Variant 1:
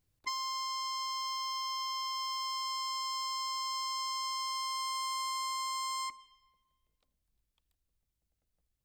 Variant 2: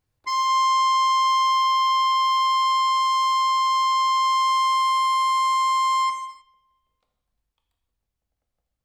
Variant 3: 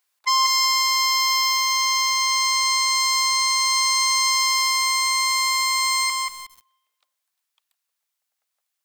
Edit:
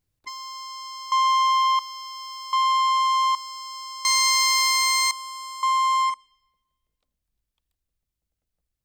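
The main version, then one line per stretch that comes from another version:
1
0:01.12–0:01.79: punch in from 2
0:02.53–0:03.35: punch in from 2
0:04.05–0:05.11: punch in from 3
0:05.63–0:06.14: punch in from 2

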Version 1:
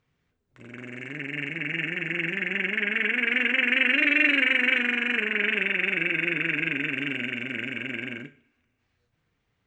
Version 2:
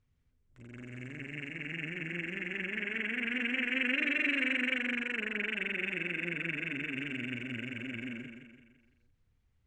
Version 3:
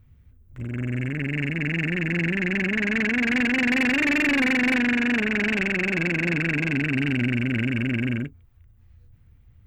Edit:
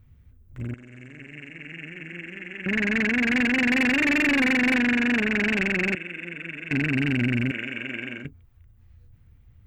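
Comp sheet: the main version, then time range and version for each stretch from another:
3
0:00.74–0:02.66: punch in from 2
0:05.95–0:06.71: punch in from 2
0:07.51–0:08.25: punch in from 1

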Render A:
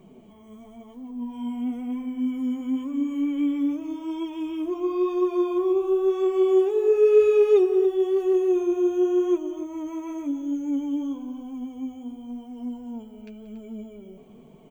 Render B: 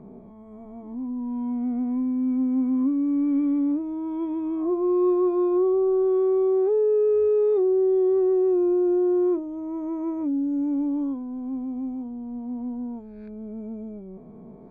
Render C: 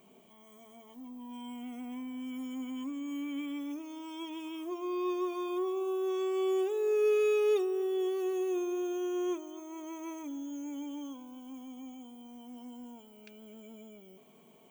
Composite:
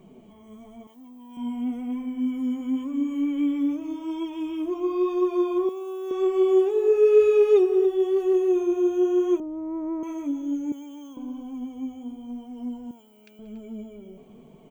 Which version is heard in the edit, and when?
A
0:00.87–0:01.37: punch in from C
0:05.69–0:06.11: punch in from C
0:09.40–0:10.03: punch in from B
0:10.72–0:11.17: punch in from C
0:12.91–0:13.39: punch in from C

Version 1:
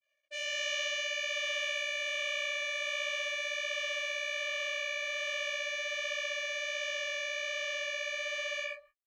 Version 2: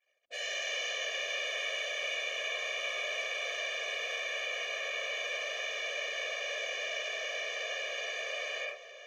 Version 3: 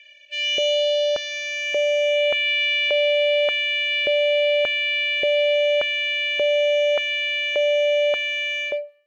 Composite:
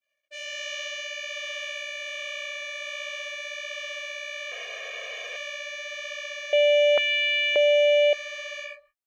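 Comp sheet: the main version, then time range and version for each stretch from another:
1
0:04.52–0:05.36: punch in from 2
0:06.53–0:08.13: punch in from 3

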